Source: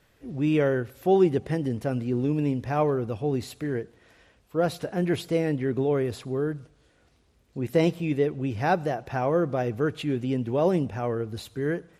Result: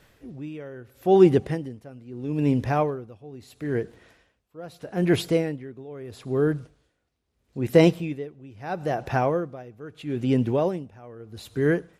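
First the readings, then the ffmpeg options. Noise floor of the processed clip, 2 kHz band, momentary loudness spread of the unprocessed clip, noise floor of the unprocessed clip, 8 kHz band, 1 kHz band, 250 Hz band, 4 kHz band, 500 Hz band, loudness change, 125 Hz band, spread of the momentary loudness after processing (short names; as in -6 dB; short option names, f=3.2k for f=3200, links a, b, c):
-74 dBFS, +0.5 dB, 8 LU, -63 dBFS, +1.0 dB, 0.0 dB, +1.0 dB, +2.0 dB, +1.0 dB, +2.5 dB, +0.5 dB, 23 LU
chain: -af "aeval=exprs='val(0)*pow(10,-22*(0.5-0.5*cos(2*PI*0.77*n/s))/20)':c=same,volume=6dB"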